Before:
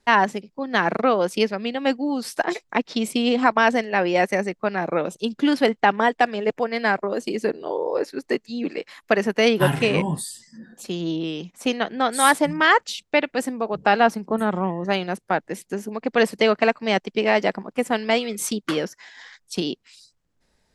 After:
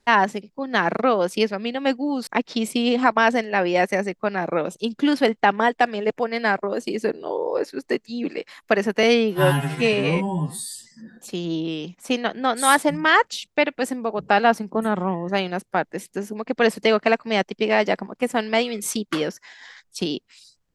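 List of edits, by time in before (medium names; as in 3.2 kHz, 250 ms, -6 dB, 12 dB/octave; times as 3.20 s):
2.27–2.67 s: delete
9.43–10.27 s: stretch 2×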